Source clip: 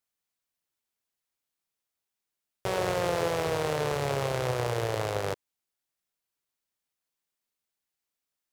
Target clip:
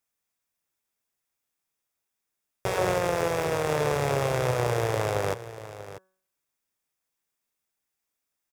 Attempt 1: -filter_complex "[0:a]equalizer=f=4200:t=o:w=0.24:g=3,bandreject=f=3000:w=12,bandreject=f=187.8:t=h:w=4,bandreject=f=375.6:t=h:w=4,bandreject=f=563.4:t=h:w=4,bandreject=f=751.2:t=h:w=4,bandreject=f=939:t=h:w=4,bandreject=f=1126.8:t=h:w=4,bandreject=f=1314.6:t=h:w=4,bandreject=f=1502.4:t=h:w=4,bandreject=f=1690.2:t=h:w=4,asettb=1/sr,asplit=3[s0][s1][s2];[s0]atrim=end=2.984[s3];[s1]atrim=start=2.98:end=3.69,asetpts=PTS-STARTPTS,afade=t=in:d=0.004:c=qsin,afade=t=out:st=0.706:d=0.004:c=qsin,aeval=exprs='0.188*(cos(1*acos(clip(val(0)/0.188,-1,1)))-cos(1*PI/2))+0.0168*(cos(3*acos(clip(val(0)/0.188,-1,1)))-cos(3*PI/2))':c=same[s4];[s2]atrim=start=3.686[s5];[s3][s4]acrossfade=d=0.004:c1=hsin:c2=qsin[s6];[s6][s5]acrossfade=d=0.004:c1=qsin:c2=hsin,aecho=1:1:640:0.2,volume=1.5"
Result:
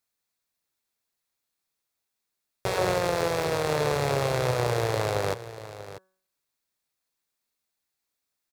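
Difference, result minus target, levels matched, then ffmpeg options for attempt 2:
4 kHz band +3.0 dB
-filter_complex "[0:a]equalizer=f=4200:t=o:w=0.24:g=-7.5,bandreject=f=3000:w=12,bandreject=f=187.8:t=h:w=4,bandreject=f=375.6:t=h:w=4,bandreject=f=563.4:t=h:w=4,bandreject=f=751.2:t=h:w=4,bandreject=f=939:t=h:w=4,bandreject=f=1126.8:t=h:w=4,bandreject=f=1314.6:t=h:w=4,bandreject=f=1502.4:t=h:w=4,bandreject=f=1690.2:t=h:w=4,asettb=1/sr,asplit=3[s0][s1][s2];[s0]atrim=end=2.984[s3];[s1]atrim=start=2.98:end=3.69,asetpts=PTS-STARTPTS,afade=t=in:d=0.004:c=qsin,afade=t=out:st=0.706:d=0.004:c=qsin,aeval=exprs='0.188*(cos(1*acos(clip(val(0)/0.188,-1,1)))-cos(1*PI/2))+0.0168*(cos(3*acos(clip(val(0)/0.188,-1,1)))-cos(3*PI/2))':c=same[s4];[s2]atrim=start=3.686[s5];[s3][s4]acrossfade=d=0.004:c1=hsin:c2=qsin[s6];[s6][s5]acrossfade=d=0.004:c1=qsin:c2=hsin,aecho=1:1:640:0.2,volume=1.5"

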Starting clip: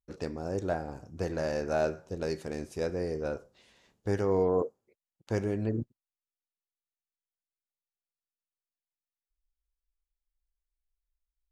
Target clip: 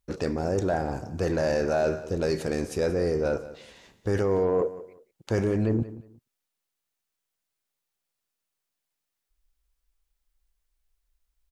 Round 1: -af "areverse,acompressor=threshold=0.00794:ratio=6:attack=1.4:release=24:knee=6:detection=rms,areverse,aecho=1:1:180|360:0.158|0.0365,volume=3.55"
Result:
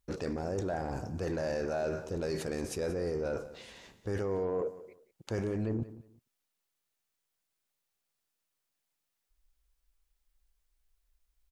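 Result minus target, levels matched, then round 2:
compression: peak gain reduction +9 dB
-af "areverse,acompressor=threshold=0.0266:ratio=6:attack=1.4:release=24:knee=6:detection=rms,areverse,aecho=1:1:180|360:0.158|0.0365,volume=3.55"

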